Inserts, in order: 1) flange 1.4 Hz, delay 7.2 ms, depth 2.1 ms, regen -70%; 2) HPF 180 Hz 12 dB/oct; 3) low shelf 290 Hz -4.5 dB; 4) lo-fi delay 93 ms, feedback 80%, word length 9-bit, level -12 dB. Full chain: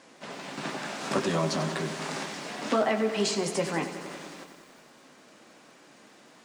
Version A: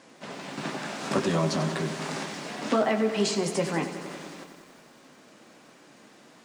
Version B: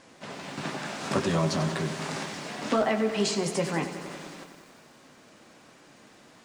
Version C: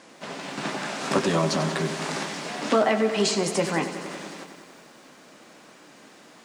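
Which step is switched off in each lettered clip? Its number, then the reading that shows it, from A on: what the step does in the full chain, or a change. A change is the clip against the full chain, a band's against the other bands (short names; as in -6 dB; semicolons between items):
3, 125 Hz band +3.0 dB; 2, 125 Hz band +4.0 dB; 1, loudness change +4.5 LU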